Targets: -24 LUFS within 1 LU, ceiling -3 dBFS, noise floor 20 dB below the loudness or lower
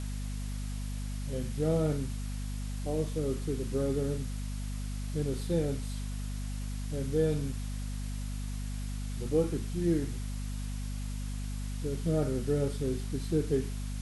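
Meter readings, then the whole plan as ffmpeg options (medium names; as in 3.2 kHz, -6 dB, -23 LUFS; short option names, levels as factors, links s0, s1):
hum 50 Hz; highest harmonic 250 Hz; hum level -33 dBFS; noise floor -36 dBFS; noise floor target -54 dBFS; loudness -34.0 LUFS; peak level -16.5 dBFS; loudness target -24.0 LUFS
-> -af "bandreject=f=50:t=h:w=4,bandreject=f=100:t=h:w=4,bandreject=f=150:t=h:w=4,bandreject=f=200:t=h:w=4,bandreject=f=250:t=h:w=4"
-af "afftdn=nr=18:nf=-36"
-af "volume=3.16"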